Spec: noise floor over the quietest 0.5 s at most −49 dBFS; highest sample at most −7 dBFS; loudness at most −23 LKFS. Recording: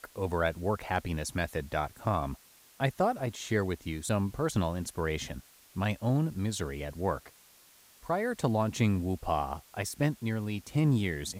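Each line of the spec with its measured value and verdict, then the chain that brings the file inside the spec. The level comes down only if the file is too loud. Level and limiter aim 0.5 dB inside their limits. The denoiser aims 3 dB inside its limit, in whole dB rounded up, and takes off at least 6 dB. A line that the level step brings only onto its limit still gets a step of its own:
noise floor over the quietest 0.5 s −59 dBFS: in spec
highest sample −14.5 dBFS: in spec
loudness −32.0 LKFS: in spec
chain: no processing needed

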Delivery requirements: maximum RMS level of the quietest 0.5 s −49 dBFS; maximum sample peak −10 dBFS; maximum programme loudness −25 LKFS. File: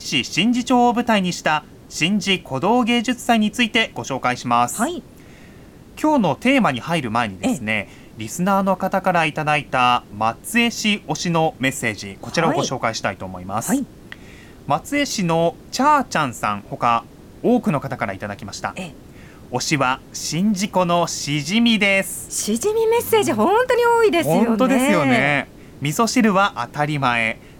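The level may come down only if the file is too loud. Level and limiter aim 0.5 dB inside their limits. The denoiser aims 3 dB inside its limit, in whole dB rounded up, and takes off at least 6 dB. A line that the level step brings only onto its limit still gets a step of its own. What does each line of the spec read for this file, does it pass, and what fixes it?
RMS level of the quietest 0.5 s −43 dBFS: out of spec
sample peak −5.5 dBFS: out of spec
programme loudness −19.0 LKFS: out of spec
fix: level −6.5 dB

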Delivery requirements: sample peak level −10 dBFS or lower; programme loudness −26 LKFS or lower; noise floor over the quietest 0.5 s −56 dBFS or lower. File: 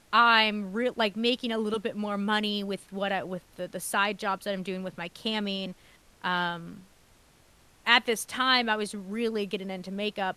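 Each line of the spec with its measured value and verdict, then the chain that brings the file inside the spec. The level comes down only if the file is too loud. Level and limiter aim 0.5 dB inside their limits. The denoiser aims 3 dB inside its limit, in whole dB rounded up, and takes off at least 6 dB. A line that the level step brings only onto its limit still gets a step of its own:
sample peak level −5.0 dBFS: out of spec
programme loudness −28.0 LKFS: in spec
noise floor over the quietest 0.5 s −60 dBFS: in spec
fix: brickwall limiter −10.5 dBFS

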